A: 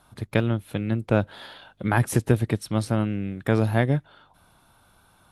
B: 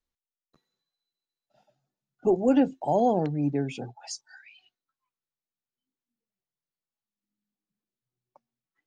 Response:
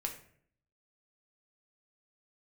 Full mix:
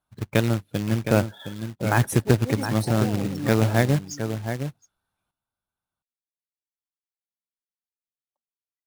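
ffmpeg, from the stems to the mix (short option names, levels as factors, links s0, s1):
-filter_complex "[0:a]volume=1.12,asplit=3[s0][s1][s2];[s1]volume=0.376[s3];[1:a]aexciter=amount=1.9:drive=6.1:freq=5900,volume=0.596,asplit=2[s4][s5];[s5]volume=0.224[s6];[s2]apad=whole_len=390746[s7];[s4][s7]sidechaincompress=threshold=0.0355:ratio=8:attack=16:release=156[s8];[s3][s6]amix=inputs=2:normalize=0,aecho=0:1:714:1[s9];[s0][s8][s9]amix=inputs=3:normalize=0,afftdn=nr=25:nf=-37,adynamicequalizer=threshold=0.002:dfrequency=4100:dqfactor=2.1:tfrequency=4100:tqfactor=2.1:attack=5:release=100:ratio=0.375:range=2.5:mode=boostabove:tftype=bell,acrusher=bits=3:mode=log:mix=0:aa=0.000001"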